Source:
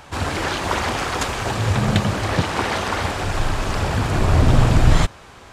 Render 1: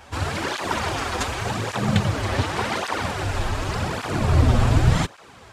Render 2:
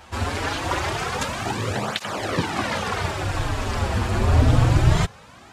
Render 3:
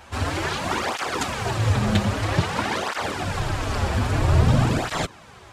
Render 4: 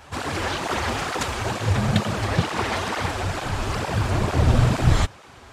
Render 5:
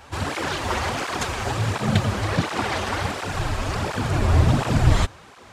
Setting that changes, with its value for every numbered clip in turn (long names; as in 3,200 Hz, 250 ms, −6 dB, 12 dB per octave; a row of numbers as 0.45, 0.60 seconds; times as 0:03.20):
through-zero flanger with one copy inverted, nulls at: 0.87, 0.25, 0.51, 2.2, 1.4 Hertz